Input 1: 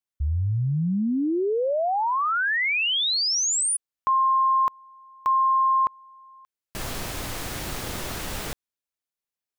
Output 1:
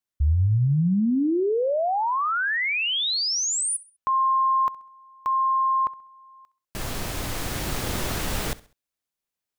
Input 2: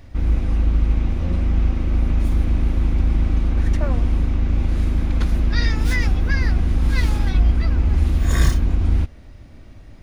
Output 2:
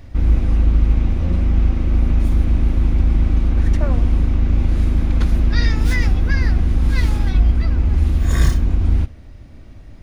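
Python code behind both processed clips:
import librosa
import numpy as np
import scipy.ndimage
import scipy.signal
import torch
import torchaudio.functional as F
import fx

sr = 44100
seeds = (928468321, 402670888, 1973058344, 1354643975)

p1 = fx.low_shelf(x, sr, hz=350.0, db=3.0)
p2 = fx.rider(p1, sr, range_db=3, speed_s=2.0)
y = p2 + fx.echo_feedback(p2, sr, ms=66, feedback_pct=36, wet_db=-20.0, dry=0)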